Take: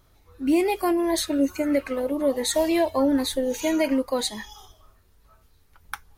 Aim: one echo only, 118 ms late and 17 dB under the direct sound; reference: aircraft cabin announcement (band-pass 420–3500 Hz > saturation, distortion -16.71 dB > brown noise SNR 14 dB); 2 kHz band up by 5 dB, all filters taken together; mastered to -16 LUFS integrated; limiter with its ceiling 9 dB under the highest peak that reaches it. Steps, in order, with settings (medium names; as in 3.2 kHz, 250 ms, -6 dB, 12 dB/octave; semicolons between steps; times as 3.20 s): peaking EQ 2 kHz +6.5 dB; peak limiter -19 dBFS; band-pass 420–3500 Hz; delay 118 ms -17 dB; saturation -25 dBFS; brown noise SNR 14 dB; trim +17 dB